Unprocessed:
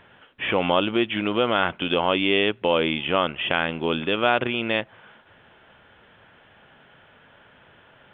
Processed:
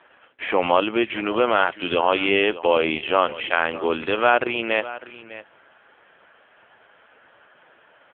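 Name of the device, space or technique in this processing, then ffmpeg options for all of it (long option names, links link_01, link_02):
satellite phone: -af "highpass=340,lowpass=3000,aecho=1:1:602:0.158,volume=4.5dB" -ar 8000 -c:a libopencore_amrnb -b:a 5900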